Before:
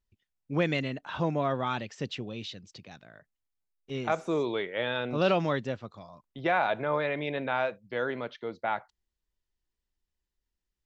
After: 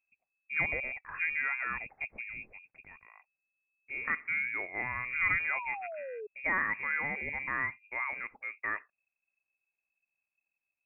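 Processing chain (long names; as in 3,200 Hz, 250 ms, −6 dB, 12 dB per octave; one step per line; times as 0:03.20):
voice inversion scrambler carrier 2,600 Hz
sound drawn into the spectrogram fall, 0:05.53–0:06.27, 410–1,100 Hz −36 dBFS
level −4.5 dB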